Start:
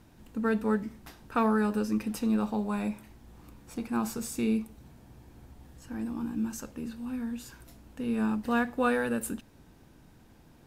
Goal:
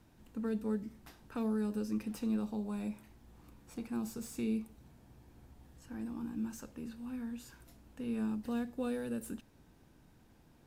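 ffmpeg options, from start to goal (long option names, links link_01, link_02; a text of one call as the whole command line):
ffmpeg -i in.wav -filter_complex "[0:a]acrossover=split=540|3100[link_01][link_02][link_03];[link_02]acompressor=threshold=-45dB:ratio=6[link_04];[link_03]asoftclip=type=tanh:threshold=-38.5dB[link_05];[link_01][link_04][link_05]amix=inputs=3:normalize=0,volume=-6.5dB" out.wav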